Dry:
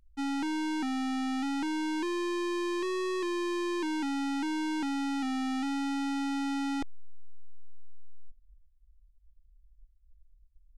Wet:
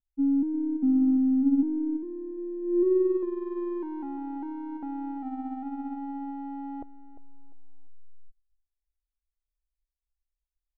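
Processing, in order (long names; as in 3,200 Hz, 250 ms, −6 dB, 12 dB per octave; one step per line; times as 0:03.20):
low-pass filter sweep 270 Hz → 690 Hz, 0:02.61–0:03.46
repeating echo 349 ms, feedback 23%, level −12 dB
expander for the loud parts 2.5 to 1, over −45 dBFS
level +4.5 dB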